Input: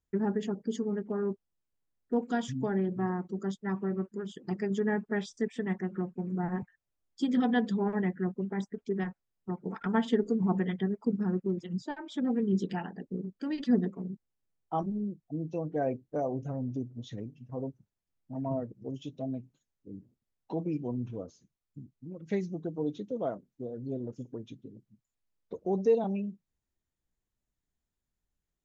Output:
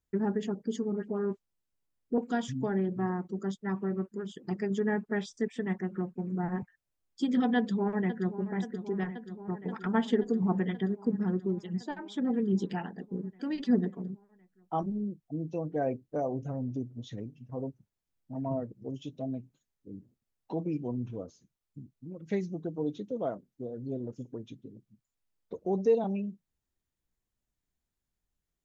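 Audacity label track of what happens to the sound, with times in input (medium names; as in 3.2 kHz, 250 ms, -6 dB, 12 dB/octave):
0.920000	2.180000	phase dispersion highs, late by 70 ms, half as late at 1.8 kHz
7.560000	8.360000	echo throw 530 ms, feedback 80%, level -12 dB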